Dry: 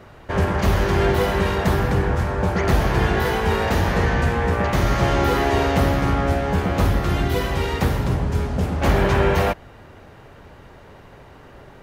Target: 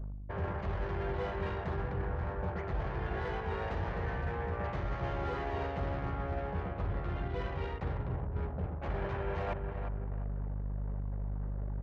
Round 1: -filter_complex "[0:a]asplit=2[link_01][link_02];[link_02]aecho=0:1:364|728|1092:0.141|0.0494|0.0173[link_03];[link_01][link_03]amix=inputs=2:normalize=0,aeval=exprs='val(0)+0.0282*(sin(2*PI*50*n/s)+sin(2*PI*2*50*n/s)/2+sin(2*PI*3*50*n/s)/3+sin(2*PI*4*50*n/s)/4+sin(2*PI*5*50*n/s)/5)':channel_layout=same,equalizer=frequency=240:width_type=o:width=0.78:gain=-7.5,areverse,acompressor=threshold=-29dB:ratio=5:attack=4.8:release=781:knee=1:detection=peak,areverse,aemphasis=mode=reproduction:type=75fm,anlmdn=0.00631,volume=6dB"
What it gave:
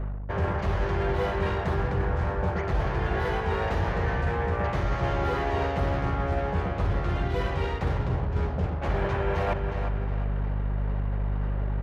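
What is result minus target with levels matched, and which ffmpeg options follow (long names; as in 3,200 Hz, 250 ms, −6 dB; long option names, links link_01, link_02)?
downward compressor: peak gain reduction −9 dB
-filter_complex "[0:a]asplit=2[link_01][link_02];[link_02]aecho=0:1:364|728|1092:0.141|0.0494|0.0173[link_03];[link_01][link_03]amix=inputs=2:normalize=0,aeval=exprs='val(0)+0.0282*(sin(2*PI*50*n/s)+sin(2*PI*2*50*n/s)/2+sin(2*PI*3*50*n/s)/3+sin(2*PI*4*50*n/s)/4+sin(2*PI*5*50*n/s)/5)':channel_layout=same,equalizer=frequency=240:width_type=o:width=0.78:gain=-7.5,areverse,acompressor=threshold=-40dB:ratio=5:attack=4.8:release=781:knee=1:detection=peak,areverse,aemphasis=mode=reproduction:type=75fm,anlmdn=0.00631,volume=6dB"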